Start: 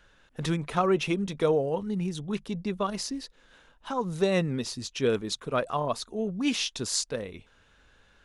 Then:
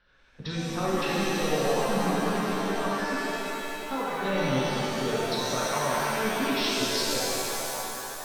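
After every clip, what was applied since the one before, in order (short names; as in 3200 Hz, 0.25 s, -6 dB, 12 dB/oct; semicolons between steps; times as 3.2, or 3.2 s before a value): rippled Chebyshev low-pass 5600 Hz, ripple 3 dB; level quantiser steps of 17 dB; shimmer reverb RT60 3.2 s, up +7 st, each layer -2 dB, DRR -7 dB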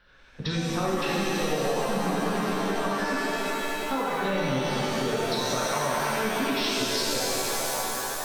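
compressor 3:1, threshold -31 dBFS, peak gain reduction 8 dB; gain +6 dB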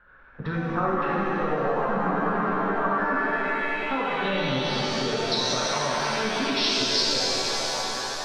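low-pass sweep 1400 Hz -> 4900 Hz, 3.13–4.91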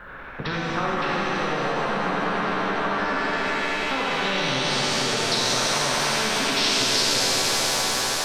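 spectral compressor 2:1; gain +1.5 dB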